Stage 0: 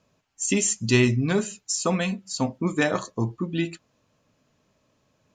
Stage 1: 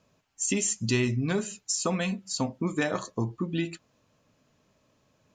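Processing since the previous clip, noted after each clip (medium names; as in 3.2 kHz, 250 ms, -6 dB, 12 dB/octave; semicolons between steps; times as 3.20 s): compression 2:1, threshold -27 dBFS, peak gain reduction 7.5 dB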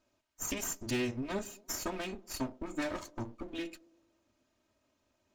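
comb filter that takes the minimum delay 3.2 ms; feedback echo behind a band-pass 111 ms, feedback 56%, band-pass 410 Hz, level -21 dB; trim -7 dB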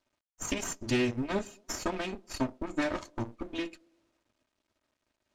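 companding laws mixed up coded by A; distance through air 54 m; trim +7 dB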